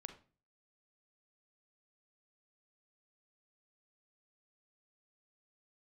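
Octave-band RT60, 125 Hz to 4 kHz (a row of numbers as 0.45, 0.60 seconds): 0.55, 0.50, 0.40, 0.35, 0.35, 0.30 seconds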